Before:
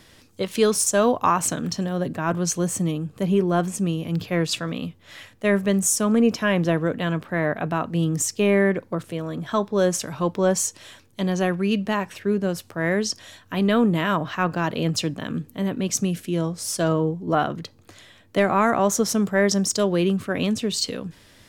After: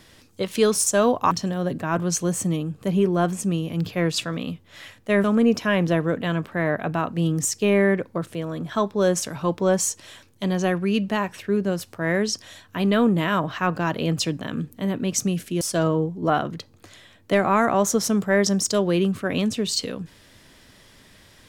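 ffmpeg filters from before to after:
-filter_complex "[0:a]asplit=4[a][b][c][d];[a]atrim=end=1.312[e];[b]atrim=start=1.658:end=5.592[f];[c]atrim=start=6.008:end=16.382[g];[d]atrim=start=16.658[h];[e][f]acrossfade=d=0.004:c1=hsin:c2=hsin[i];[i][g]acrossfade=d=0.004:c1=hsin:c2=hsin[j];[j][h]acrossfade=d=0.004:c1=hsin:c2=hsin"

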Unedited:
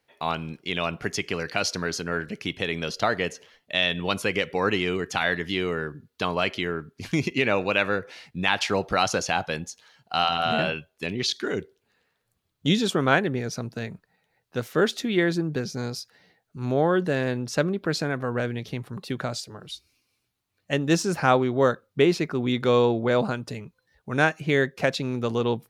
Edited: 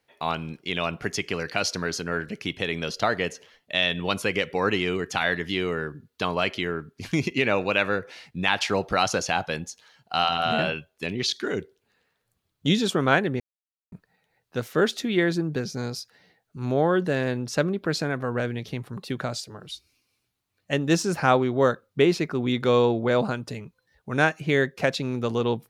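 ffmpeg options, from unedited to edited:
-filter_complex "[0:a]asplit=3[a][b][c];[a]atrim=end=13.4,asetpts=PTS-STARTPTS,afade=t=out:st=13.396:d=0.004:c=hsin[d];[b]atrim=start=13.4:end=13.92,asetpts=PTS-STARTPTS,volume=0[e];[c]atrim=start=13.92,asetpts=PTS-STARTPTS,afade=t=in:d=0.004:c=hsin[f];[d][e][f]concat=n=3:v=0:a=1"

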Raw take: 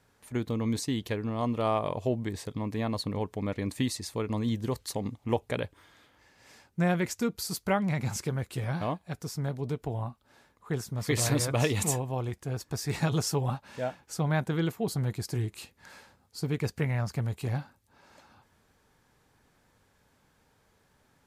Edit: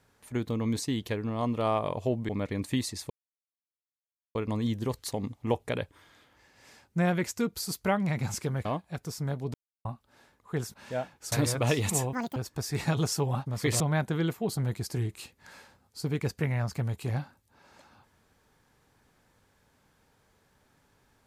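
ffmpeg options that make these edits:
-filter_complex "[0:a]asplit=12[a][b][c][d][e][f][g][h][i][j][k][l];[a]atrim=end=2.292[m];[b]atrim=start=3.358:end=4.17,asetpts=PTS-STARTPTS,afade=t=out:st=0.808:d=0.004:c=hsin,apad=pad_dur=1.25[n];[c]atrim=start=4.17:end=8.472,asetpts=PTS-STARTPTS,afade=t=in:d=0.004:c=hsin[o];[d]atrim=start=8.818:end=9.71,asetpts=PTS-STARTPTS,afade=t=out:st=0.888:d=0.004:c=hsin[p];[e]atrim=start=9.71:end=10.02,asetpts=PTS-STARTPTS,volume=0[q];[f]atrim=start=10.02:end=10.912,asetpts=PTS-STARTPTS,afade=t=in:d=0.004:c=hsin[r];[g]atrim=start=13.608:end=14.192[s];[h]atrim=start=11.248:end=12.064[t];[i]atrim=start=12.06:end=12.51,asetpts=PTS-STARTPTS,asetrate=85554,aresample=44100,atrim=end_sample=10229,asetpts=PTS-STARTPTS[u];[j]atrim=start=12.506:end=13.612[v];[k]atrim=start=10.908:end=11.252[w];[l]atrim=start=14.188[x];[n][o]concat=n=2:v=0:a=1[y];[m][y]acrossfade=d=0.004:c1=hsin:c2=hsin[z];[p][q][r]concat=n=3:v=0:a=1[aa];[z][aa]acrossfade=d=0.004:c1=hsin:c2=hsin[ab];[ab][s]acrossfade=d=0.004:c1=hsin:c2=hsin[ac];[ac][t]acrossfade=d=0.004:c1=hsin:c2=hsin[ad];[ad][u]acrossfade=d=0.004:c1=hsin:c2=hsin[ae];[ae][v]acrossfade=d=0.004:c1=hsin:c2=hsin[af];[af][w]acrossfade=d=0.004:c1=hsin:c2=hsin[ag];[ag][x]acrossfade=d=0.004:c1=hsin:c2=hsin"

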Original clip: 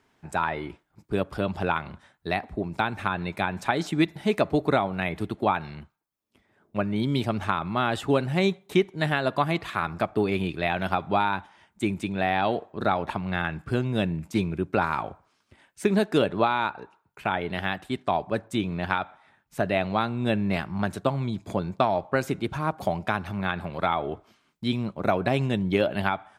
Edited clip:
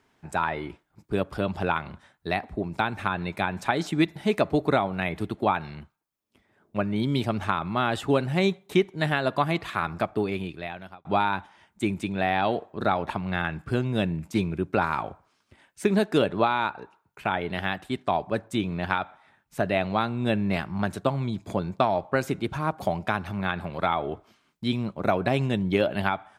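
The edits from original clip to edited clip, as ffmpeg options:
-filter_complex "[0:a]asplit=2[a][b];[a]atrim=end=11.05,asetpts=PTS-STARTPTS,afade=t=out:st=9.97:d=1.08[c];[b]atrim=start=11.05,asetpts=PTS-STARTPTS,afade=t=in:d=0.004:c=hsin[d];[c][d]concat=n=2:v=0:a=1"

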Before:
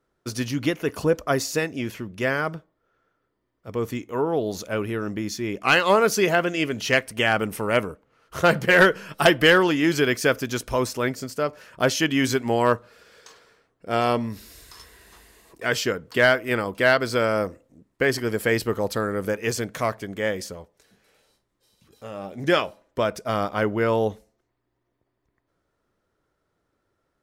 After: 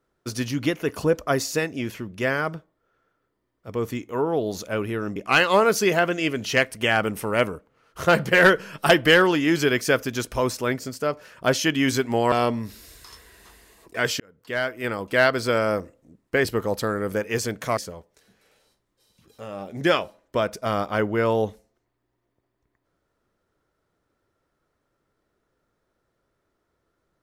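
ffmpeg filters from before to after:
-filter_complex "[0:a]asplit=6[a][b][c][d][e][f];[a]atrim=end=5.162[g];[b]atrim=start=5.518:end=12.682[h];[c]atrim=start=13.988:end=15.87,asetpts=PTS-STARTPTS,afade=t=out:st=1.878:d=0.004:c=hsin[i];[d]atrim=start=15.87:end=18.122,asetpts=PTS-STARTPTS,afade=t=in:d=1.03[j];[e]atrim=start=18.578:end=19.902[k];[f]atrim=start=20.398[l];[g][h]acrossfade=d=0.004:c1=hsin:c2=hsin[m];[i][j]concat=n=2:v=0:a=1[n];[m][n]acrossfade=d=0.004:c1=hsin:c2=hsin[o];[o][k]acrossfade=d=0.004:c1=hsin:c2=hsin[p];[p][l]acrossfade=d=0.004:c1=hsin:c2=hsin"

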